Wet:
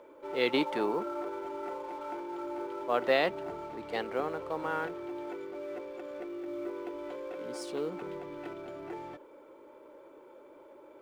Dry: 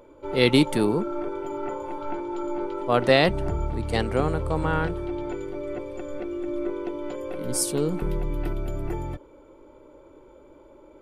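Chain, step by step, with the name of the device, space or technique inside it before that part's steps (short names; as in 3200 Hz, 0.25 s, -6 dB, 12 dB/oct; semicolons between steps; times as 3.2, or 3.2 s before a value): 0.53–1.49 dynamic EQ 990 Hz, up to +5 dB, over -35 dBFS, Q 0.75; phone line with mismatched companding (BPF 370–3300 Hz; G.711 law mismatch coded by mu); gain -7 dB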